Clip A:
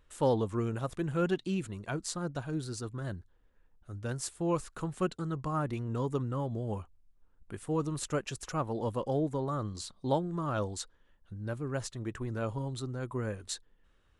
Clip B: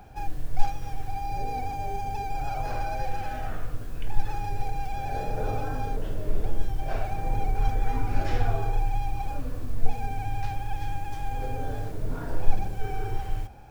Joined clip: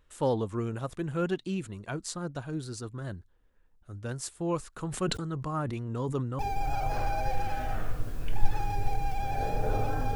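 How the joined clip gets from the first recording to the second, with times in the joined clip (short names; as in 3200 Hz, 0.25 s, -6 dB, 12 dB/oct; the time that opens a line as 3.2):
clip A
4.73–6.39 sustainer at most 52 dB/s
6.39 switch to clip B from 2.13 s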